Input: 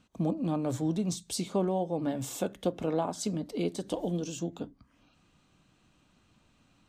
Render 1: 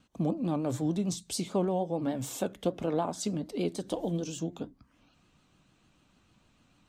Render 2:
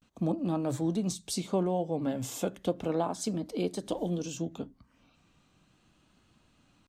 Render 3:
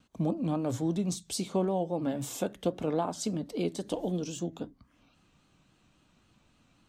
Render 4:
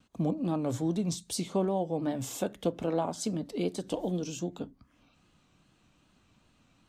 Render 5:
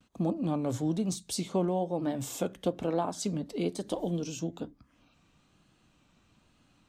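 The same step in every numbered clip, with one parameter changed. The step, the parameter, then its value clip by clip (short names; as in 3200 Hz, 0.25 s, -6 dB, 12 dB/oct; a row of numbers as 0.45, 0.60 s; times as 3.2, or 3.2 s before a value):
vibrato, rate: 6.7, 0.36, 3.7, 2.5, 1.1 Hz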